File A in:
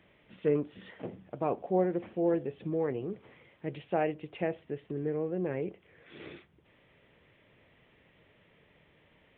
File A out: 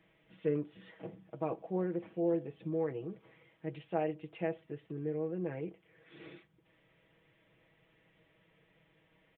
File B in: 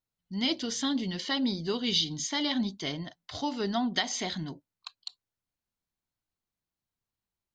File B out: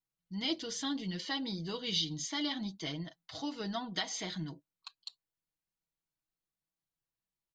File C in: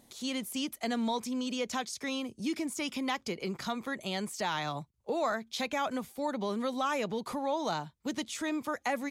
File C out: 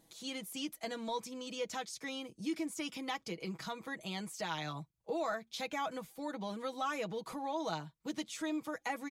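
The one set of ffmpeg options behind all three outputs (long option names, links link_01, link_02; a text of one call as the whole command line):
ffmpeg -i in.wav -af "aecho=1:1:6.2:0.68,volume=-7dB" out.wav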